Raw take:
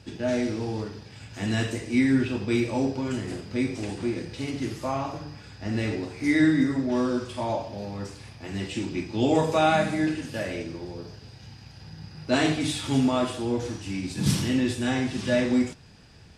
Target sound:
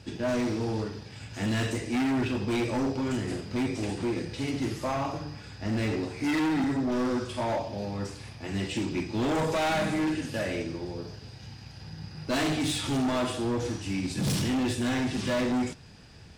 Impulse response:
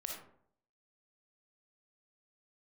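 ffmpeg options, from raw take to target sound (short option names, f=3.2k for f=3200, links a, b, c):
-af "asoftclip=type=hard:threshold=-25.5dB,volume=1dB"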